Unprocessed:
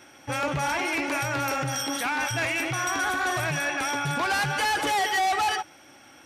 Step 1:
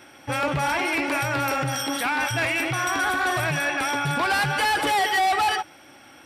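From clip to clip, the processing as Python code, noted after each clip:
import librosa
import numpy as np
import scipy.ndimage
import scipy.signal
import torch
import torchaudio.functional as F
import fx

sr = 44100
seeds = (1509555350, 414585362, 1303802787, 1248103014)

y = fx.peak_eq(x, sr, hz=6400.0, db=-9.0, octaves=0.28)
y = y * 10.0 ** (3.0 / 20.0)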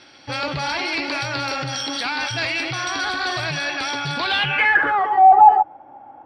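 y = fx.filter_sweep_lowpass(x, sr, from_hz=4500.0, to_hz=820.0, start_s=4.19, end_s=5.25, q=7.8)
y = y * 10.0 ** (-2.0 / 20.0)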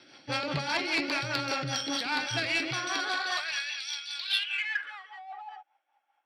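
y = fx.filter_sweep_highpass(x, sr, from_hz=140.0, to_hz=3200.0, start_s=2.71, end_s=3.79, q=0.94)
y = fx.rotary(y, sr, hz=5.0)
y = fx.cheby_harmonics(y, sr, harmonics=(3,), levels_db=(-18,), full_scale_db=-12.0)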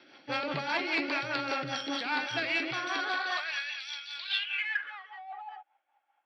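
y = fx.bandpass_edges(x, sr, low_hz=200.0, high_hz=3400.0)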